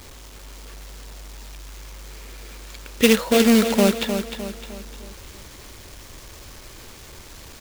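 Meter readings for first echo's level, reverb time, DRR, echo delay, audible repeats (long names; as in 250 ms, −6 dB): −8.0 dB, no reverb audible, no reverb audible, 305 ms, 4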